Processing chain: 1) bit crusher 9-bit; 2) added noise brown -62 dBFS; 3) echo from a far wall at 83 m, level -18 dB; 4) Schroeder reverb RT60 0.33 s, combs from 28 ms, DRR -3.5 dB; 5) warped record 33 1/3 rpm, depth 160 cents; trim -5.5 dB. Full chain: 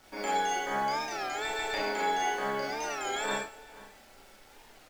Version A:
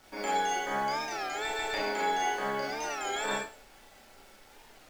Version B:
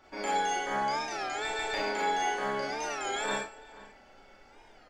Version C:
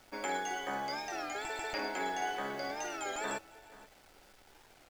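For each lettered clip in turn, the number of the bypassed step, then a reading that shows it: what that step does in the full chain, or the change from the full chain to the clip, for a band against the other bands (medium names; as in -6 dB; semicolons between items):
3, momentary loudness spread change -4 LU; 1, distortion -25 dB; 4, momentary loudness spread change +2 LU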